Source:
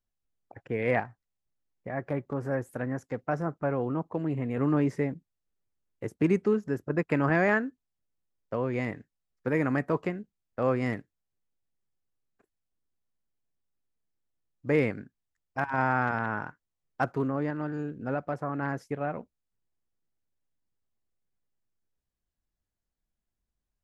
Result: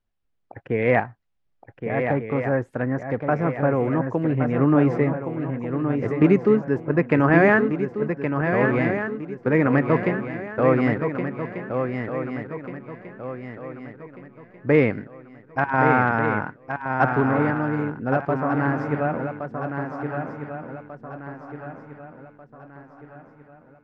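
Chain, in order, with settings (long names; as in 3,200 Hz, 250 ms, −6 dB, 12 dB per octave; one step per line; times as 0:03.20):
low-pass filter 3,200 Hz 12 dB per octave
on a send: feedback echo with a long and a short gap by turns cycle 1,492 ms, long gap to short 3 to 1, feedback 40%, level −6.5 dB
on the sum: level +7.5 dB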